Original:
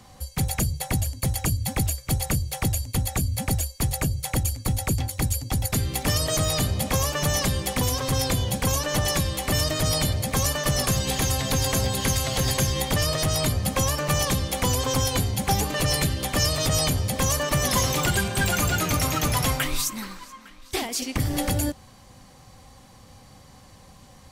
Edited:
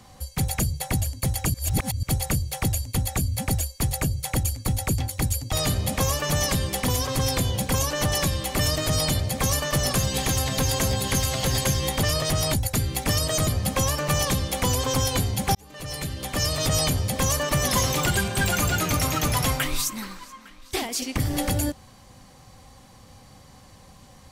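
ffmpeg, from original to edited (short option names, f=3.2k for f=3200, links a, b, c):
-filter_complex "[0:a]asplit=7[a][b][c][d][e][f][g];[a]atrim=end=1.542[h];[b]atrim=start=1.538:end=2.032,asetpts=PTS-STARTPTS,areverse[i];[c]atrim=start=2.028:end=5.532[j];[d]atrim=start=6.458:end=13.472[k];[e]atrim=start=5.528:end=6.462[l];[f]atrim=start=13.468:end=15.55,asetpts=PTS-STARTPTS,afade=t=out:st=2.078:d=0.004:c=hsin[m];[g]atrim=start=15.55,asetpts=PTS-STARTPTS,afade=t=in:d=1.14[n];[h][i]acrossfade=d=0.004:c1=hsin:c2=hsin[o];[o][j]acrossfade=d=0.004:c1=hsin:c2=hsin[p];[p][k]acrossfade=d=0.004:c1=hsin:c2=hsin[q];[q][l]acrossfade=d=0.004:c1=hsin:c2=hsin[r];[m][n]concat=n=2:v=0:a=1[s];[r][s]acrossfade=d=0.004:c1=hsin:c2=hsin"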